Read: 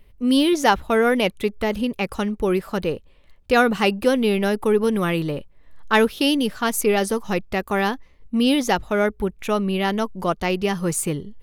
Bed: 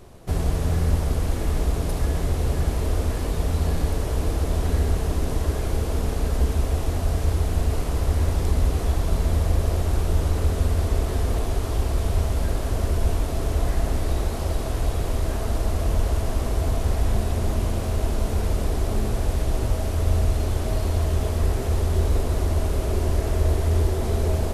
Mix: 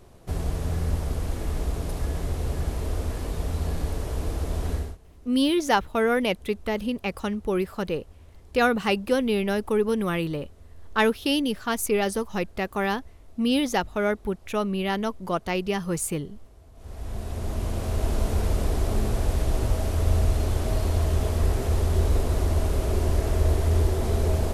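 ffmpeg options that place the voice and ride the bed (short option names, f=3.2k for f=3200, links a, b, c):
-filter_complex "[0:a]adelay=5050,volume=-4.5dB[a];[1:a]volume=22.5dB,afade=t=out:st=4.72:d=0.25:silence=0.0668344,afade=t=in:st=16.74:d=1.41:silence=0.0421697[b];[a][b]amix=inputs=2:normalize=0"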